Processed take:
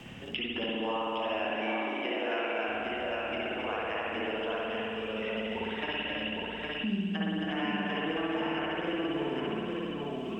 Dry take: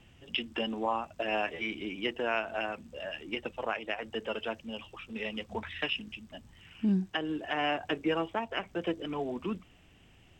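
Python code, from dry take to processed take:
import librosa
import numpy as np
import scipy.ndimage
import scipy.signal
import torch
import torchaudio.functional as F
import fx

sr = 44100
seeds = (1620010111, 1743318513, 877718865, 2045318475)

y = fx.highpass(x, sr, hz=250.0, slope=24, at=(0.63, 2.67))
y = fx.echo_multitap(y, sr, ms=(269, 811), db=(-4.0, -5.0))
y = fx.rev_spring(y, sr, rt60_s=1.6, pass_ms=(55,), chirp_ms=50, drr_db=-5.5)
y = fx.band_squash(y, sr, depth_pct=70)
y = F.gain(torch.from_numpy(y), -8.0).numpy()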